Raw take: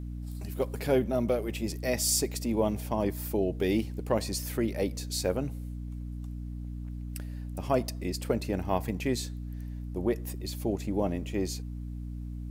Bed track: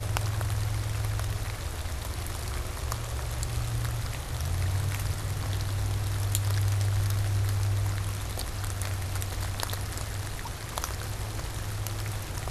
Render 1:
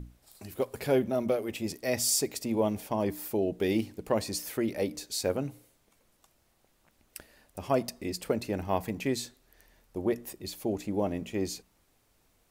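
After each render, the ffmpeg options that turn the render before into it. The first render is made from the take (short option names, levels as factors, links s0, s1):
-af "bandreject=f=60:t=h:w=6,bandreject=f=120:t=h:w=6,bandreject=f=180:t=h:w=6,bandreject=f=240:t=h:w=6,bandreject=f=300:t=h:w=6"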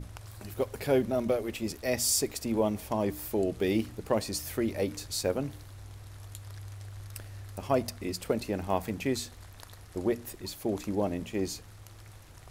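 -filter_complex "[1:a]volume=0.141[s0];[0:a][s0]amix=inputs=2:normalize=0"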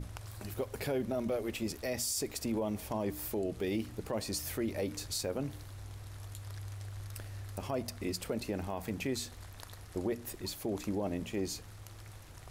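-af "acompressor=threshold=0.02:ratio=1.5,alimiter=level_in=1.19:limit=0.0631:level=0:latency=1:release=17,volume=0.841"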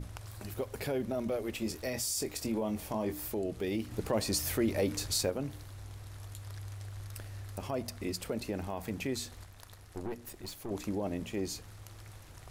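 -filter_complex "[0:a]asettb=1/sr,asplit=3[s0][s1][s2];[s0]atrim=end=1.594[s3];[s1]atrim=start=1.59:end=3.21,asetpts=PTS-STARTPTS,afade=t=in:d=0.004:c=qsin,afade=t=out:st=1.616:d=0.004:c=qsin,asplit=2[s4][s5];[s5]adelay=23,volume=0.422[s6];[s4][s6]amix=inputs=2:normalize=0,atrim=end_sample=71442[s7];[s2]atrim=start=3.206[s8];[s3][s7]acrossfade=d=0.004:c1=hsin:c2=qsin[s9];[s9][s8]acrossfade=d=0.004:c1=qsin:c2=hsin,asettb=1/sr,asplit=3[s10][s11][s12];[s10]atrim=end=3.914[s13];[s11]atrim=start=3.91:end=5.3,asetpts=PTS-STARTPTS,afade=t=in:d=0.004:c=qsin,afade=t=out:st=1.386:d=0.004:c=qsin,acontrast=24[s14];[s12]atrim=start=5.296[s15];[s13][s14]acrossfade=d=0.004:c1=hsin:c2=qsin[s16];[s16][s15]acrossfade=d=0.004:c1=qsin:c2=hsin,asettb=1/sr,asplit=3[s17][s18][s19];[s17]atrim=end=9.444[s20];[s18]atrim=start=9.44:end=10.71,asetpts=PTS-STARTPTS,afade=t=in:d=0.004:c=qsin,afade=t=out:st=1.266:d=0.004:c=qsin,aeval=exprs='(tanh(44.7*val(0)+0.7)-tanh(0.7))/44.7':c=same[s21];[s19]atrim=start=10.706[s22];[s20][s21]acrossfade=d=0.004:c1=hsin:c2=qsin[s23];[s23][s22]acrossfade=d=0.004:c1=qsin:c2=hsin"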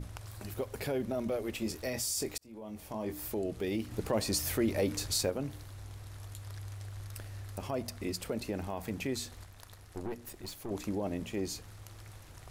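-filter_complex "[0:a]asplit=2[s0][s1];[s0]atrim=end=2.38,asetpts=PTS-STARTPTS,afade=t=out:st=2.376:d=0.004:c=hsin[s2];[s1]atrim=start=2.38,asetpts=PTS-STARTPTS,afade=t=in:d=0.95[s3];[s2][s3]concat=n=2:v=0:a=1"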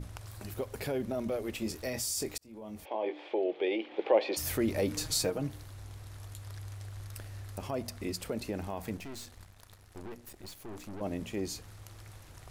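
-filter_complex "[0:a]asplit=3[s0][s1][s2];[s0]afade=t=out:st=2.84:d=0.02[s3];[s1]highpass=f=340:w=0.5412,highpass=f=340:w=1.3066,equalizer=f=350:t=q:w=4:g=7,equalizer=f=530:t=q:w=4:g=9,equalizer=f=810:t=q:w=4:g=9,equalizer=f=1300:t=q:w=4:g=-4,equalizer=f=2300:t=q:w=4:g=8,equalizer=f=3300:t=q:w=4:g=9,lowpass=f=3400:w=0.5412,lowpass=f=3400:w=1.3066,afade=t=in:st=2.84:d=0.02,afade=t=out:st=4.36:d=0.02[s4];[s2]afade=t=in:st=4.36:d=0.02[s5];[s3][s4][s5]amix=inputs=3:normalize=0,asettb=1/sr,asplit=3[s6][s7][s8];[s6]atrim=end=4.964[s9];[s7]atrim=start=4.96:end=5.48,asetpts=PTS-STARTPTS,afade=t=in:d=0.004:c=qsin,afade=t=out:st=0.516:d=0.004:c=qsin,aecho=1:1:6.4:0.63,atrim=end_sample=22932[s10];[s8]atrim=start=5.476[s11];[s9][s10]acrossfade=d=0.004:c1=hsin:c2=qsin[s12];[s12][s11]acrossfade=d=0.004:c1=qsin:c2=hsin,asettb=1/sr,asplit=3[s13][s14][s15];[s13]atrim=end=8.974[s16];[s14]atrim=start=8.97:end=11.01,asetpts=PTS-STARTPTS,afade=t=in:d=0.004:c=qsin,afade=t=out:st=2.036:d=0.004:c=qsin,aeval=exprs='(tanh(112*val(0)+0.75)-tanh(0.75))/112':c=same[s17];[s15]atrim=start=11.006[s18];[s16][s17]acrossfade=d=0.004:c1=hsin:c2=qsin[s19];[s19][s18]acrossfade=d=0.004:c1=qsin:c2=hsin"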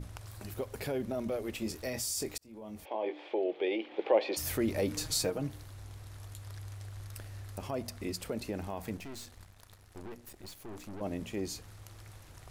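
-af "volume=0.891"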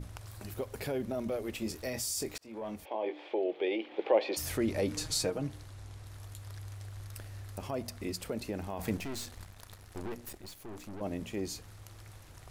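-filter_complex "[0:a]asettb=1/sr,asplit=3[s0][s1][s2];[s0]atrim=end=2.354[s3];[s1]atrim=start=2.35:end=2.76,asetpts=PTS-STARTPTS,afade=t=in:d=0.004:c=qsin,afade=t=out:st=0.406:d=0.004:c=qsin,asplit=2[s4][s5];[s5]highpass=f=720:p=1,volume=8.91,asoftclip=type=tanh:threshold=0.0501[s6];[s4][s6]amix=inputs=2:normalize=0,lowpass=f=2200:p=1,volume=0.501[s7];[s2]atrim=start=2.756[s8];[s3][s7]acrossfade=d=0.004:c1=hsin:c2=qsin[s9];[s9][s8]acrossfade=d=0.004:c1=qsin:c2=hsin,asettb=1/sr,asplit=3[s10][s11][s12];[s10]atrim=end=4.454[s13];[s11]atrim=start=4.45:end=6.05,asetpts=PTS-STARTPTS,afade=t=in:d=0.004:c=qsin,afade=t=out:st=1.596:d=0.004:c=qsin,lowpass=11000[s14];[s12]atrim=start=6.046[s15];[s13][s14]acrossfade=d=0.004:c1=hsin:c2=qsin[s16];[s16][s15]acrossfade=d=0.004:c1=qsin:c2=hsin,asettb=1/sr,asplit=3[s17][s18][s19];[s17]atrim=end=8.794[s20];[s18]atrim=start=8.79:end=10.38,asetpts=PTS-STARTPTS,afade=t=in:d=0.004:c=qsin,afade=t=out:st=1.586:d=0.004:c=qsin,acontrast=38[s21];[s19]atrim=start=10.376[s22];[s20][s21]acrossfade=d=0.004:c1=hsin:c2=qsin[s23];[s23][s22]acrossfade=d=0.004:c1=qsin:c2=hsin"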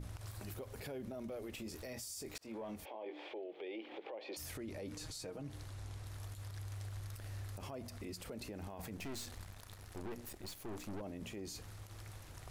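-af "acompressor=threshold=0.0158:ratio=12,alimiter=level_in=4.73:limit=0.0631:level=0:latency=1:release=51,volume=0.211"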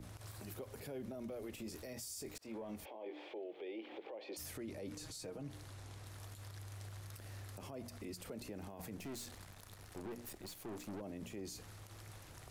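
-filter_complex "[0:a]acrossover=split=110|550|6100[s0][s1][s2][s3];[s0]acompressor=threshold=0.00112:ratio=6[s4];[s2]alimiter=level_in=14.1:limit=0.0631:level=0:latency=1:release=41,volume=0.0708[s5];[s4][s1][s5][s3]amix=inputs=4:normalize=0"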